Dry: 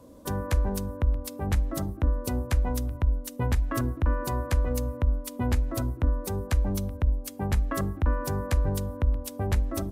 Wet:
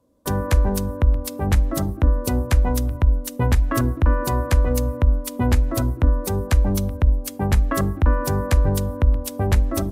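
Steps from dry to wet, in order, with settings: gate with hold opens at -34 dBFS; trim +7.5 dB

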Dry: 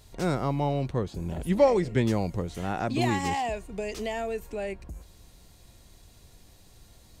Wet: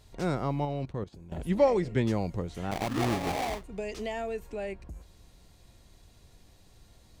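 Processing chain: 0.65–1.32 s: level held to a coarse grid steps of 15 dB; 2.71–3.64 s: sample-rate reducer 1.5 kHz, jitter 20%; treble shelf 7.6 kHz -7.5 dB; trim -2.5 dB

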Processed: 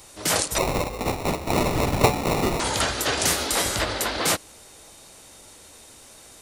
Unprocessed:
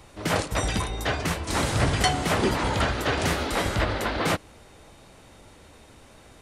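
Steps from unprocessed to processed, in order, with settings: tone controls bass -6 dB, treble +14 dB; 0.58–2.60 s: sample-rate reducer 1.6 kHz, jitter 0%

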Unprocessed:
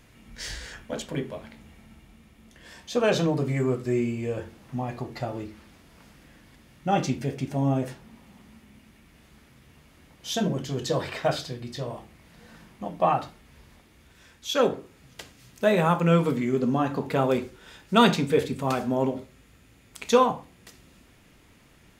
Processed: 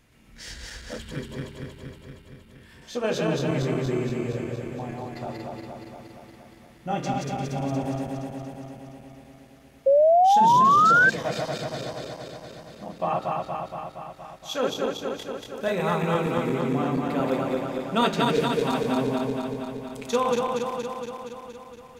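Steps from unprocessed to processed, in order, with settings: backward echo that repeats 117 ms, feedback 82%, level -1.5 dB; 0.98–2.82 s: fifteen-band graphic EQ 100 Hz +8 dB, 630 Hz -9 dB, 6.3 kHz -9 dB; 9.86–11.10 s: painted sound rise 530–1600 Hz -11 dBFS; trim -5.5 dB

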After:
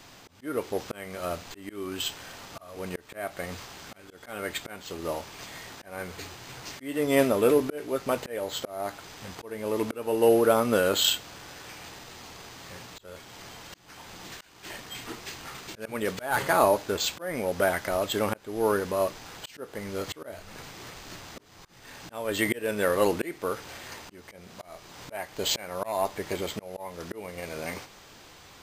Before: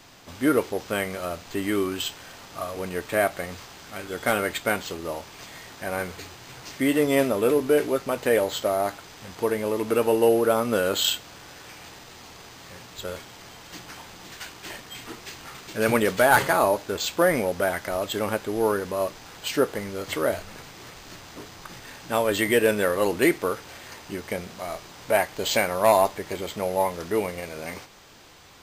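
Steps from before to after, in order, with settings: slow attack 409 ms

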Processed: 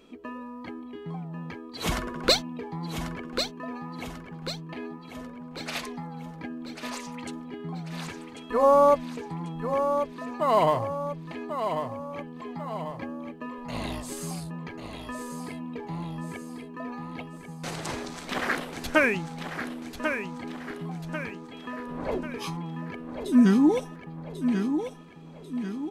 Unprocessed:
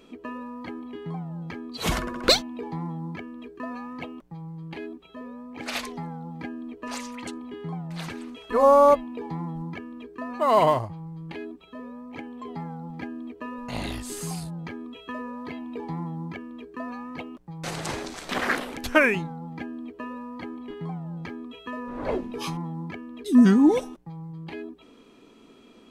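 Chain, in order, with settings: feedback delay 1092 ms, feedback 47%, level -7.5 dB; trim -2.5 dB

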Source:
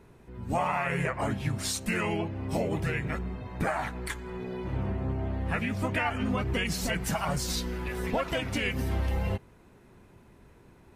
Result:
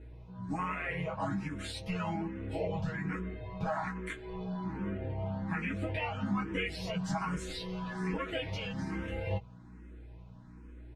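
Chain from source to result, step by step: comb 6.3 ms, depth 75%; peak limiter -21 dBFS, peak gain reduction 6.5 dB; on a send: early reflections 11 ms -3.5 dB, 21 ms -5.5 dB; on the sum: hum 60 Hz, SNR 14 dB; distance through air 91 m; barber-pole phaser +1.2 Hz; trim -4 dB

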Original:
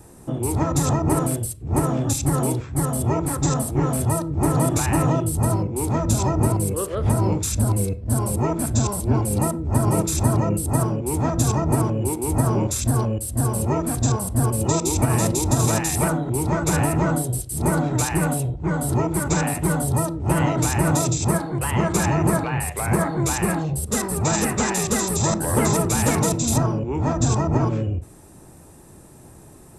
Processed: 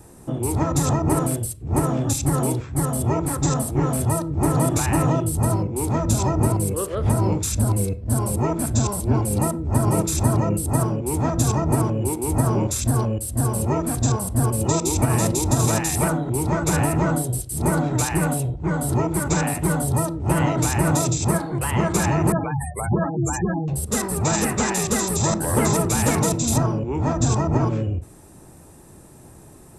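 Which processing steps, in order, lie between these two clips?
22.32–23.68 s: spectral gate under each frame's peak -15 dB strong

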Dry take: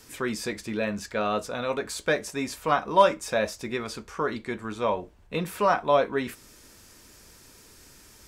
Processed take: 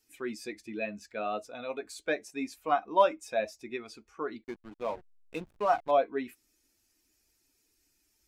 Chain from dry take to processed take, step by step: expander on every frequency bin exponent 1.5; tone controls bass -12 dB, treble -3 dB; small resonant body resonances 280/690/2500 Hz, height 9 dB, ringing for 20 ms; 4.44–5.91 s: hysteresis with a dead band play -32.5 dBFS; trim -6 dB

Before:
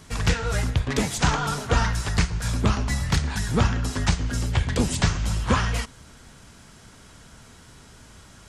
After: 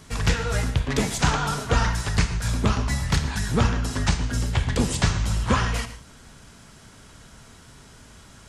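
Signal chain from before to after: gated-style reverb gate 170 ms flat, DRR 10 dB

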